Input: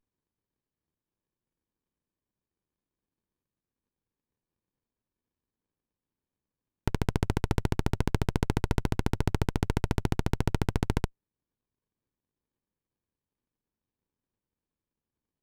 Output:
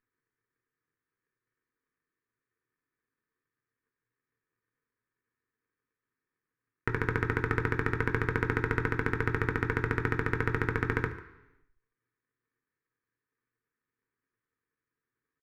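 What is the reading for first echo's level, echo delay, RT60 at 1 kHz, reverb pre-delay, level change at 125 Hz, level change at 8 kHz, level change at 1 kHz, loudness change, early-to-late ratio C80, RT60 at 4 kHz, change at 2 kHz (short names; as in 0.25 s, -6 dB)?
-18.0 dB, 0.145 s, 0.90 s, 3 ms, -3.0 dB, under -10 dB, +2.0 dB, 0.0 dB, 13.0 dB, 0.90 s, +10.5 dB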